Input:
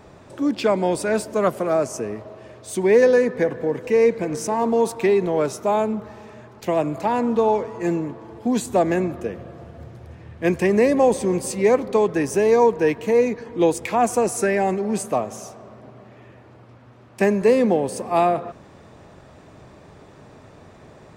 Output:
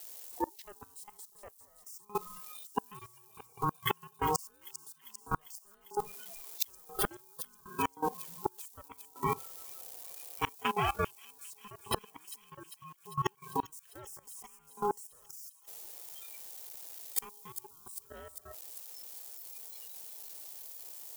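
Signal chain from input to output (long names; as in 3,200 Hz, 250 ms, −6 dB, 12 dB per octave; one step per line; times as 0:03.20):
spike at every zero crossing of −22.5 dBFS
spectral tilt +4.5 dB per octave
0:10.55–0:11.25: power curve on the samples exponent 2
ring modulation 620 Hz
0:02.25–0:02.91: compressor whose output falls as the input rises −26 dBFS, ratio −1
0:12.63–0:13.26: noise gate −17 dBFS, range −28 dB
noise reduction from a noise print of the clip's start 24 dB
flat-topped bell 560 Hz +12.5 dB
gate with flip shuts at −16 dBFS, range −38 dB
output level in coarse steps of 19 dB
delay with a high-pass on its return 398 ms, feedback 72%, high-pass 4,600 Hz, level −9.5 dB
level +9 dB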